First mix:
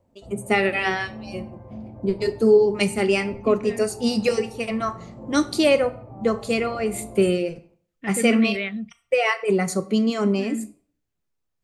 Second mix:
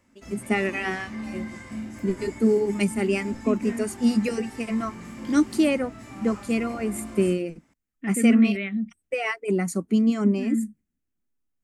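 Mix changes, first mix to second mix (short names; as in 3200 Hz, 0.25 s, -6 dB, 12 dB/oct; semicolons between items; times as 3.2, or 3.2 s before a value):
first voice: send off; background: remove Chebyshev low-pass 750 Hz, order 3; master: add graphic EQ 125/250/500/1000/4000 Hz -8/+8/-7/-4/-10 dB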